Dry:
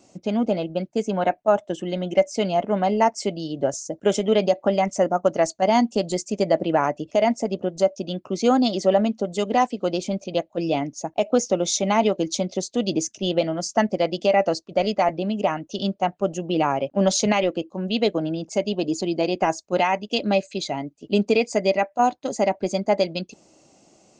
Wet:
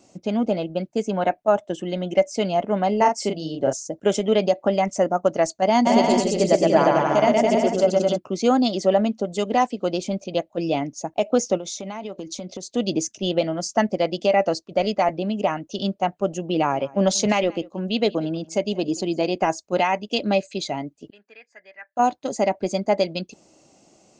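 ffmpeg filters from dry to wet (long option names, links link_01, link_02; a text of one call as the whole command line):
ffmpeg -i in.wav -filter_complex "[0:a]asettb=1/sr,asplit=3[link_01][link_02][link_03];[link_01]atrim=end=2.974[link_04];[link_02]atrim=start=2.97:end=3.73,asetpts=PTS-STARTPTS,afade=type=in:duration=0.004:curve=qsin,afade=type=out:start_time=0.756:duration=0.004:curve=qsin,asplit=2[link_05][link_06];[link_06]adelay=38,volume=-5dB[link_07];[link_05][link_07]amix=inputs=2:normalize=0,atrim=end_sample=33516[link_08];[link_03]atrim=start=3.726[link_09];[link_04][link_08]acrossfade=duration=0.004:curve1=hsin:curve2=qsin[link_10];[link_10][link_09]acrossfade=duration=0.004:curve1=qsin:curve2=hsin,asplit=3[link_11][link_12][link_13];[link_11]afade=type=out:start_time=5.85:duration=0.02[link_14];[link_12]aecho=1:1:120|216|292.8|354.2|403.4|442.7:0.794|0.631|0.501|0.398|0.316|0.251,afade=type=in:start_time=5.85:duration=0.02,afade=type=out:start_time=8.16:duration=0.02[link_15];[link_13]afade=type=in:start_time=8.16:duration=0.02[link_16];[link_14][link_15][link_16]amix=inputs=3:normalize=0,asplit=3[link_17][link_18][link_19];[link_17]afade=type=out:start_time=11.57:duration=0.02[link_20];[link_18]acompressor=threshold=-28dB:ratio=10:attack=3.2:release=140:knee=1:detection=peak,afade=type=in:start_time=11.57:duration=0.02,afade=type=out:start_time=12.69:duration=0.02[link_21];[link_19]afade=type=in:start_time=12.69:duration=0.02[link_22];[link_20][link_21][link_22]amix=inputs=3:normalize=0,asplit=3[link_23][link_24][link_25];[link_23]afade=type=out:start_time=16.72:duration=0.02[link_26];[link_24]aecho=1:1:182:0.075,afade=type=in:start_time=16.72:duration=0.02,afade=type=out:start_time=19.36:duration=0.02[link_27];[link_25]afade=type=in:start_time=19.36:duration=0.02[link_28];[link_26][link_27][link_28]amix=inputs=3:normalize=0,asettb=1/sr,asplit=3[link_29][link_30][link_31];[link_29]atrim=end=21.104[link_32];[link_30]atrim=start=21.1:end=21.97,asetpts=PTS-STARTPTS,afade=type=in:duration=0.004:curve=qsin,afade=type=out:start_time=0.866:duration=0.004:curve=qsin,bandpass=frequency=1700:width_type=q:width=12[link_33];[link_31]atrim=start=21.966[link_34];[link_32][link_33]acrossfade=duration=0.004:curve1=hsin:curve2=qsin[link_35];[link_35][link_34]acrossfade=duration=0.004:curve1=qsin:curve2=hsin" out.wav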